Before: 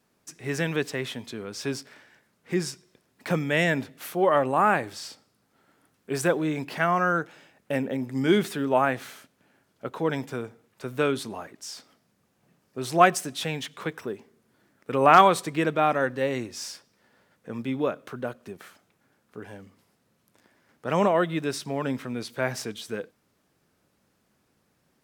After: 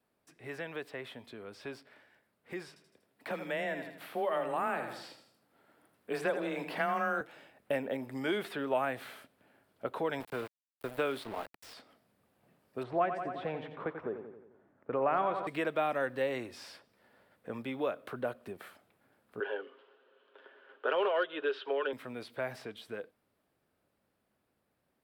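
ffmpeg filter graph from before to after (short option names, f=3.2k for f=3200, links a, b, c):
-filter_complex "[0:a]asettb=1/sr,asplit=3[a][b][c];[a]atrim=end=2.684[d];[b]atrim=start=2.68:end=7.21,asetpts=PTS-STARTPTS,afade=t=in:d=0.004:c=qsin,afade=t=out:st=4.526:d=0.004:c=qsin,afreqshift=19,aecho=1:1:80|160|240|320:0.316|0.123|0.0481|0.0188,atrim=end_sample=199773[e];[c]atrim=start=7.206[f];[d][e]acrossfade=d=0.004:c1=hsin:c2=qsin[g];[g][f]acrossfade=d=0.004:c1=qsin:c2=hsin,asettb=1/sr,asplit=3[h][i][j];[h]atrim=end=10.204[k];[i]atrim=start=10.2:end=11.74,asetpts=PTS-STARTPTS,afade=t=in:d=0.004:c=qsin,afade=t=out:st=1.536:d=0.004:c=qsin,highpass=83,aeval=exprs='val(0)*gte(abs(val(0)),0.0133)':c=same[l];[j]atrim=start=11.736[m];[k][l]acrossfade=d=0.004:c1=hsin:c2=qsin[n];[n][m]acrossfade=d=0.004:c1=qsin:c2=hsin,asettb=1/sr,asplit=3[o][p][q];[o]atrim=end=12.834[r];[p]atrim=start=12.83:end=15.47,asetpts=PTS-STARTPTS,afade=t=in:d=0.004:c=qsin,afade=t=out:st=2.636:d=0.004:c=qsin,lowpass=1.3k,aecho=1:1:89|178|267|356|445|534:0.316|0.171|0.0922|0.0498|0.0269|0.0145,atrim=end_sample=116424[s];[q]atrim=start=15.466[t];[r][s]acrossfade=d=0.004:c1=hsin:c2=qsin[u];[u][t]acrossfade=d=0.004:c1=qsin:c2=hsin,asettb=1/sr,asplit=3[v][w][x];[v]atrim=end=19.404[y];[w]atrim=start=19.4:end=21.93,asetpts=PTS-STARTPTS,afade=t=in:d=0.004:c=qsin,afade=t=out:st=2.526:d=0.004:c=qsin,highpass=f=380:w=0.5412,highpass=f=380:w=1.3066,equalizer=f=420:t=q:w=4:g=9,equalizer=f=710:t=q:w=4:g=-7,equalizer=f=1.5k:t=q:w=4:g=8,equalizer=f=2.1k:t=q:w=4:g=-9,equalizer=f=3.1k:t=q:w=4:g=9,lowpass=f=3.2k:w=0.5412,lowpass=f=3.2k:w=1.3066,aecho=1:1:7.5:0.44,atrim=end_sample=111573,acontrast=68[z];[x]atrim=start=21.926[aa];[y][z]acrossfade=d=0.004:c1=hsin:c2=qsin[ab];[ab][aa]acrossfade=d=0.004:c1=qsin:c2=hsin,acrossover=split=440|2000|4800[ac][ad][ae][af];[ac]acompressor=threshold=-38dB:ratio=4[ag];[ad]acompressor=threshold=-31dB:ratio=4[ah];[ae]acompressor=threshold=-39dB:ratio=4[ai];[af]acompressor=threshold=-52dB:ratio=4[aj];[ag][ah][ai][aj]amix=inputs=4:normalize=0,equalizer=f=160:t=o:w=0.67:g=-4,equalizer=f=630:t=o:w=0.67:g=4,equalizer=f=6.3k:t=o:w=0.67:g=-11,dynaudnorm=f=640:g=13:m=6.5dB,volume=-9dB"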